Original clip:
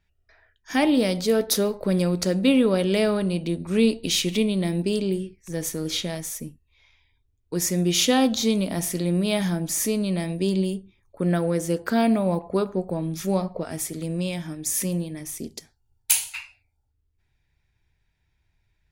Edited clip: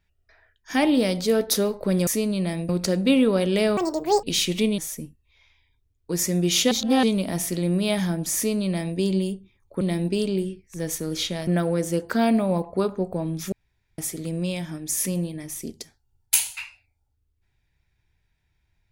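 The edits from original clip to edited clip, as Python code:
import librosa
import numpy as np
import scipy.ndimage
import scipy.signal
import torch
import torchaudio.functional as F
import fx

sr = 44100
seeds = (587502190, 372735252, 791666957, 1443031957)

y = fx.edit(x, sr, fx.speed_span(start_s=3.15, length_s=0.85, speed=1.84),
    fx.move(start_s=4.55, length_s=1.66, to_s=11.24),
    fx.reverse_span(start_s=8.14, length_s=0.32),
    fx.duplicate(start_s=9.78, length_s=0.62, to_s=2.07),
    fx.room_tone_fill(start_s=13.29, length_s=0.46), tone=tone)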